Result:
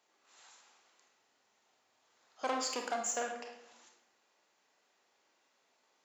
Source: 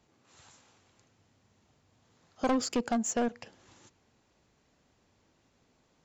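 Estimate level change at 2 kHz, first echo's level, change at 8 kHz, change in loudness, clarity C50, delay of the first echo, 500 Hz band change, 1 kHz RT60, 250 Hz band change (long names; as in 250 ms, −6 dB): −0.5 dB, no echo audible, can't be measured, −5.5 dB, 5.0 dB, no echo audible, −6.0 dB, 0.80 s, −16.0 dB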